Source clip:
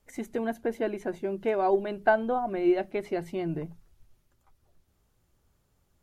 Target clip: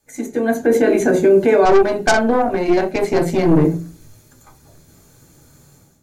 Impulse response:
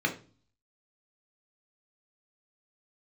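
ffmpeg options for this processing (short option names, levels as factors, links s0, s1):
-filter_complex "[0:a]dynaudnorm=f=410:g=3:m=6.31[s0];[1:a]atrim=start_sample=2205,asetrate=43659,aresample=44100[s1];[s0][s1]afir=irnorm=-1:irlink=0,asettb=1/sr,asplit=3[s2][s3][s4];[s2]atrim=end=1.654[s5];[s3]atrim=start=1.65:end=3.65,asetpts=PTS-STARTPTS,afade=t=in:d=0.004:c=qsin,afade=t=out:st=1.996:d=0.004:c=qsin,aeval=exprs='(tanh(1.78*val(0)+0.6)-tanh(0.6))/1.78':c=same[s6];[s4]atrim=start=3.646[s7];[s5][s6]acrossfade=d=0.004:c1=hsin:c2=qsin[s8];[s8][s7]acrossfade=d=0.004:c1=qsin:c2=hsin,alimiter=limit=0.841:level=0:latency=1:release=50,highshelf=f=4500:t=q:w=1.5:g=13,volume=0.708"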